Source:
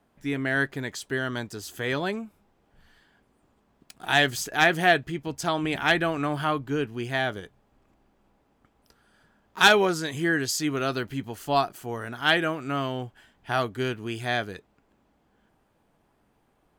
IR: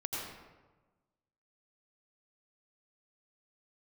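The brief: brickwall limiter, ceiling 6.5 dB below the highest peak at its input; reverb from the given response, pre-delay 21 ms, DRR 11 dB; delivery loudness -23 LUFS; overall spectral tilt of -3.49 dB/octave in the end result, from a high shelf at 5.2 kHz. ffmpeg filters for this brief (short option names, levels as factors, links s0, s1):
-filter_complex "[0:a]highshelf=f=5200:g=7,alimiter=limit=0.316:level=0:latency=1,asplit=2[s0][s1];[1:a]atrim=start_sample=2205,adelay=21[s2];[s1][s2]afir=irnorm=-1:irlink=0,volume=0.2[s3];[s0][s3]amix=inputs=2:normalize=0,volume=1.41"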